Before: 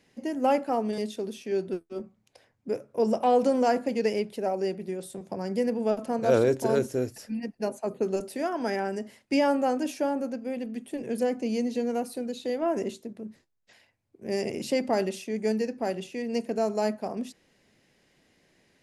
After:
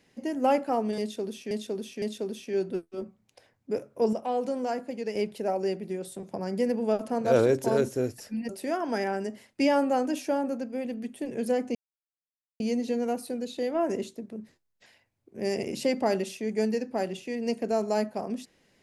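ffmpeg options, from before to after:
-filter_complex "[0:a]asplit=7[a][b][c][d][e][f][g];[a]atrim=end=1.512[h];[b]atrim=start=0.998:end=1.512[i];[c]atrim=start=0.998:end=3.112[j];[d]atrim=start=3.108:end=4.132,asetpts=PTS-STARTPTS,volume=-7dB[k];[e]atrim=start=4.128:end=7.472[l];[f]atrim=start=8.208:end=11.47,asetpts=PTS-STARTPTS,afade=t=out:st=3.258:d=0.004:c=hsin,apad=pad_dur=0.85[m];[g]atrim=start=11.47,asetpts=PTS-STARTPTS,afade=t=in:d=0.004:c=hsin[n];[h][i]acrossfade=d=0.004:c1=hsin:c2=hsin[o];[o][j]acrossfade=d=0.004:c1=hsin:c2=hsin[p];[p][k]acrossfade=d=0.004:c1=hsin:c2=hsin[q];[q][l]acrossfade=d=0.004:c1=hsin:c2=hsin[r];[m][n]concat=n=2:v=0:a=1[s];[r][s]acrossfade=d=0.004:c1=hsin:c2=hsin"

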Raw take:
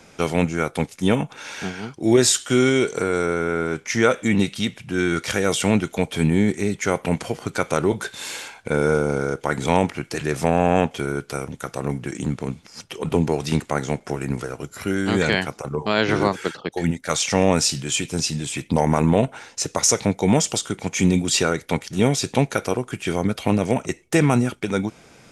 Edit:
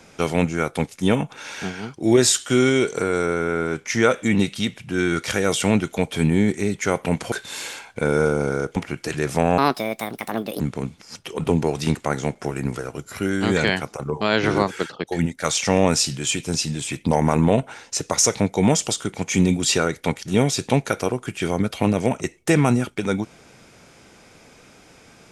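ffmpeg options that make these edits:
-filter_complex "[0:a]asplit=5[a][b][c][d][e];[a]atrim=end=7.322[f];[b]atrim=start=8.008:end=9.452[g];[c]atrim=start=9.828:end=10.654[h];[d]atrim=start=10.65:end=12.25,asetpts=PTS-STARTPTS,asetrate=69237,aresample=44100[i];[e]atrim=start=12.246[j];[f][g]acrossfade=d=0.004:c1=hsin:c2=hsin[k];[k][h]acrossfade=d=0.004:c1=hsin:c2=hsin[l];[l][i]acrossfade=d=0.004:c1=hsin:c2=hsin[m];[m][j]acrossfade=d=0.004:c1=hsin:c2=hsin"

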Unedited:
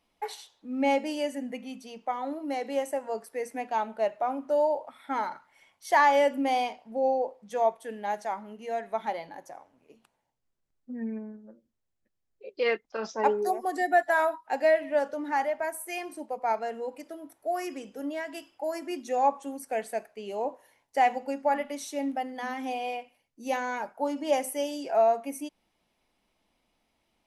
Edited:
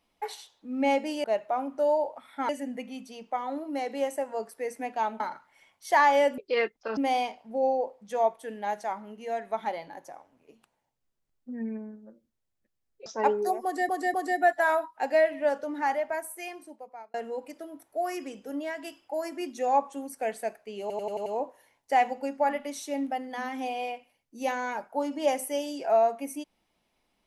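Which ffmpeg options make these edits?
-filter_complex "[0:a]asplit=15[a][b][c][d][e][f][g][h][i][j][k][l][m][n][o];[a]atrim=end=1.242[p];[b]atrim=start=3.948:end=5.202[q];[c]atrim=start=1.238:end=3.952[r];[d]atrim=start=5.198:end=6.382[s];[e]atrim=start=12.468:end=13.062[t];[f]atrim=start=6.378:end=12.472[u];[g]atrim=start=13.058:end=13.892[v];[h]atrim=start=13.638:end=13.892[w];[i]atrim=start=13.638:end=16.64,asetpts=PTS-STARTPTS,afade=t=out:st=1.952:d=1.05[x];[j]atrim=start=16.64:end=20.402,asetpts=PTS-STARTPTS,afade=t=in:d=0.004:c=hsin[y];[k]atrim=start=20.308:end=20.402[z];[l]atrim=start=20.308:end=20.402[aa];[m]atrim=start=20.308:end=20.402[ab];[n]atrim=start=20.308:end=20.402[ac];[o]atrim=start=20.308[ad];[p][q]acrossfade=d=0.004:c1=hsin:c2=hsin[ae];[ae][r]acrossfade=d=0.004:c1=hsin:c2=hsin[af];[af][s]acrossfade=d=0.004:c1=hsin:c2=hsin[ag];[ag][t]acrossfade=d=0.004:c1=hsin:c2=hsin[ah];[ah][u]acrossfade=d=0.004:c1=hsin:c2=hsin[ai];[ai][v]acrossfade=d=0.004:c1=hsin:c2=hsin[aj];[aj][w]acrossfade=d=0.004:c1=hsin:c2=hsin[ak];[x][y]concat=n=2:v=0:a=1[al];[ak][al]acrossfade=d=0.004:c1=hsin:c2=hsin[am];[am][z]acrossfade=d=0.004:c1=hsin:c2=hsin[an];[an][aa]acrossfade=d=0.004:c1=hsin:c2=hsin[ao];[ao][ab]acrossfade=d=0.004:c1=hsin:c2=hsin[ap];[ap][ac]acrossfade=d=0.004:c1=hsin:c2=hsin[aq];[aq][ad]acrossfade=d=0.004:c1=hsin:c2=hsin"

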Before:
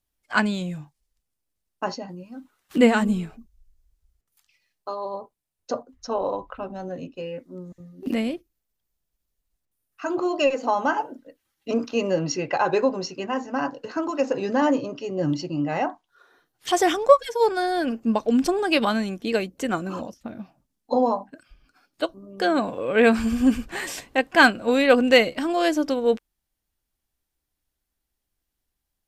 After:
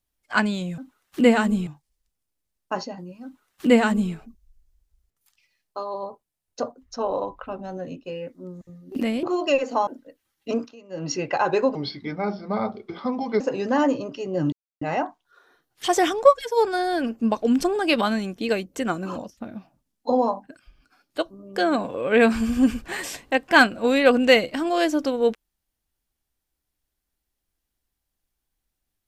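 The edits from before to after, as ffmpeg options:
-filter_complex "[0:a]asplit=11[a][b][c][d][e][f][g][h][i][j][k];[a]atrim=end=0.782[l];[b]atrim=start=2.348:end=3.242[m];[c]atrim=start=0.778:end=8.342[n];[d]atrim=start=10.148:end=10.792[o];[e]atrim=start=11.068:end=11.96,asetpts=PTS-STARTPTS,afade=t=out:st=0.652:d=0.24:silence=0.0668344[p];[f]atrim=start=11.96:end=12.09,asetpts=PTS-STARTPTS,volume=-23.5dB[q];[g]atrim=start=12.09:end=12.954,asetpts=PTS-STARTPTS,afade=t=in:d=0.24:silence=0.0668344[r];[h]atrim=start=12.95:end=14.24,asetpts=PTS-STARTPTS,asetrate=34398,aresample=44100[s];[i]atrim=start=14.236:end=15.36,asetpts=PTS-STARTPTS,afade=t=out:st=1.12:d=0.004:c=hsin[t];[j]atrim=start=15.36:end=15.65,asetpts=PTS-STARTPTS,volume=0[u];[k]atrim=start=15.65,asetpts=PTS-STARTPTS,afade=t=in:d=0.004:c=hsin[v];[l][m]acrossfade=d=0.004:c1=hsin:c2=hsin[w];[w][n]acrossfade=d=0.004:c1=hsin:c2=hsin[x];[x][o]acrossfade=d=0.004:c1=hsin:c2=hsin[y];[p][q][r]concat=n=3:v=0:a=1[z];[y][z]acrossfade=d=0.004:c1=hsin:c2=hsin[aa];[aa][s]acrossfade=d=0.004:c1=hsin:c2=hsin[ab];[t][u][v]concat=n=3:v=0:a=1[ac];[ab][ac]acrossfade=d=0.004:c1=hsin:c2=hsin"

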